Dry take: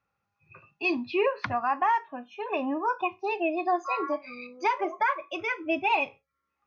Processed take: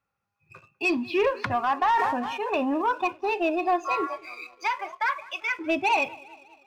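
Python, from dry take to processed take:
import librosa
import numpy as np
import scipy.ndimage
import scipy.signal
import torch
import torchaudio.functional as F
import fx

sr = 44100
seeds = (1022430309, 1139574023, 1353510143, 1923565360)

y = fx.highpass(x, sr, hz=1100.0, slope=12, at=(4.07, 5.59))
y = fx.echo_feedback(y, sr, ms=198, feedback_pct=60, wet_db=-22.5)
y = fx.leveller(y, sr, passes=1)
y = fx.sustainer(y, sr, db_per_s=31.0, at=(1.78, 2.82))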